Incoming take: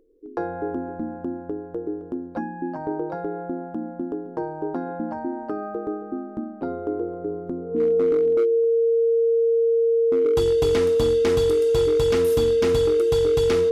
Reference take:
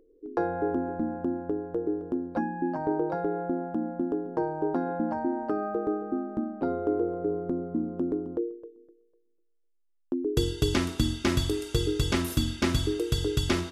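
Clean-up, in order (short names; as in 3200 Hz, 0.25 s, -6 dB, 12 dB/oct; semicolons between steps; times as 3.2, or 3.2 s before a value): clip repair -15 dBFS; notch 460 Hz, Q 30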